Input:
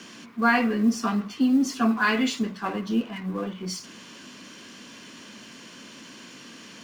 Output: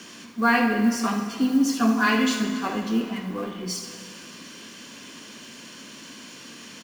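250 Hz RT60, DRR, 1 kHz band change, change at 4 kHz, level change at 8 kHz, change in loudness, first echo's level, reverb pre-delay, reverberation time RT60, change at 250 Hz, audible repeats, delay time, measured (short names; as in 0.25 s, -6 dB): 2.5 s, 5.0 dB, +1.5 dB, +2.5 dB, +4.5 dB, +1.5 dB, -11.0 dB, 7 ms, 2.5 s, +1.0 dB, 1, 73 ms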